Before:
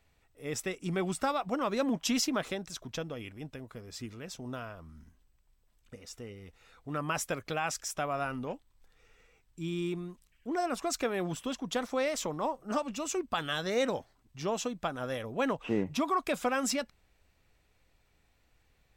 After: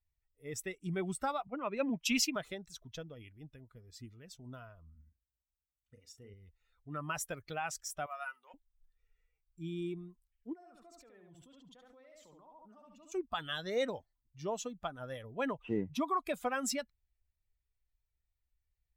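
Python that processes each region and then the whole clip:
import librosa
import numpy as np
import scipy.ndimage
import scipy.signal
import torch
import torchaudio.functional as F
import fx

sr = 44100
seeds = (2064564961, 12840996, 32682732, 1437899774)

y = fx.chain(x, sr, fx.peak_eq(hz=2500.0, db=10.5, octaves=0.5),
    fx.band_widen(depth_pct=100), at=(1.47, 2.36))
y = fx.chain(y, sr, fx.highpass(hz=66.0, slope=12),
    fx.doubler(ms=39.0, db=-7.0), at=(4.95, 6.34))
y = fx.chain(y, sr, fx.highpass(hz=1000.0, slope=12),
    fx.high_shelf(hz=11000.0, db=4.5),
    fx.comb(ms=5.5, depth=0.4), at=(8.06, 8.54))
y = fx.chain(y, sr, fx.high_shelf(hz=6300.0, db=-6.5),
    fx.echo_feedback(ms=70, feedback_pct=31, wet_db=-3.5),
    fx.level_steps(step_db=23), at=(10.53, 13.12))
y = fx.bin_expand(y, sr, power=1.5)
y = fx.high_shelf(y, sr, hz=11000.0, db=3.5)
y = y * librosa.db_to_amplitude(-2.0)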